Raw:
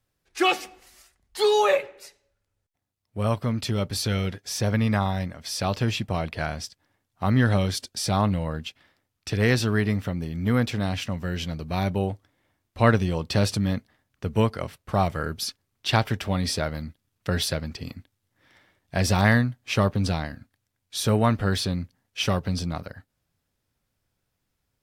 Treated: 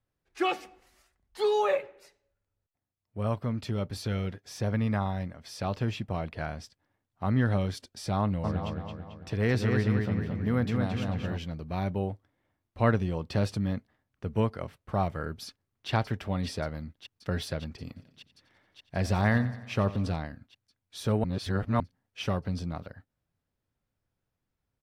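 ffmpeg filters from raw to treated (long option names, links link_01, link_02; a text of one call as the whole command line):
ffmpeg -i in.wav -filter_complex "[0:a]asplit=3[link_01][link_02][link_03];[link_01]afade=type=out:start_time=8.43:duration=0.02[link_04];[link_02]asplit=2[link_05][link_06];[link_06]adelay=221,lowpass=frequency=4900:poles=1,volume=-3.5dB,asplit=2[link_07][link_08];[link_08]adelay=221,lowpass=frequency=4900:poles=1,volume=0.51,asplit=2[link_09][link_10];[link_10]adelay=221,lowpass=frequency=4900:poles=1,volume=0.51,asplit=2[link_11][link_12];[link_12]adelay=221,lowpass=frequency=4900:poles=1,volume=0.51,asplit=2[link_13][link_14];[link_14]adelay=221,lowpass=frequency=4900:poles=1,volume=0.51,asplit=2[link_15][link_16];[link_16]adelay=221,lowpass=frequency=4900:poles=1,volume=0.51,asplit=2[link_17][link_18];[link_18]adelay=221,lowpass=frequency=4900:poles=1,volume=0.51[link_19];[link_05][link_07][link_09][link_11][link_13][link_15][link_17][link_19]amix=inputs=8:normalize=0,afade=type=in:start_time=8.43:duration=0.02,afade=type=out:start_time=11.37:duration=0.02[link_20];[link_03]afade=type=in:start_time=11.37:duration=0.02[link_21];[link_04][link_20][link_21]amix=inputs=3:normalize=0,asplit=2[link_22][link_23];[link_23]afade=type=in:start_time=15.46:duration=0.01,afade=type=out:start_time=15.9:duration=0.01,aecho=0:1:580|1160|1740|2320|2900|3480|4060|4640|5220|5800|6380|6960:0.421697|0.337357|0.269886|0.215909|0.172727|0.138182|0.110545|0.0884362|0.0707489|0.0565991|0.0452793|0.0362235[link_24];[link_22][link_24]amix=inputs=2:normalize=0,asplit=3[link_25][link_26][link_27];[link_25]afade=type=out:start_time=17.95:duration=0.02[link_28];[link_26]aecho=1:1:89|178|267|356|445|534:0.158|0.0951|0.0571|0.0342|0.0205|0.0123,afade=type=in:start_time=17.95:duration=0.02,afade=type=out:start_time=20.15:duration=0.02[link_29];[link_27]afade=type=in:start_time=20.15:duration=0.02[link_30];[link_28][link_29][link_30]amix=inputs=3:normalize=0,asplit=3[link_31][link_32][link_33];[link_31]atrim=end=21.242[link_34];[link_32]atrim=start=21.238:end=21.802,asetpts=PTS-STARTPTS,areverse[link_35];[link_33]atrim=start=21.798[link_36];[link_34][link_35]acrossfade=duration=0.004:curve1=hsin:curve2=hsin[link_37];[link_37][link_36]acrossfade=duration=0.004:curve1=hsin:curve2=hsin,highshelf=frequency=2900:gain=-10.5,volume=-5dB" out.wav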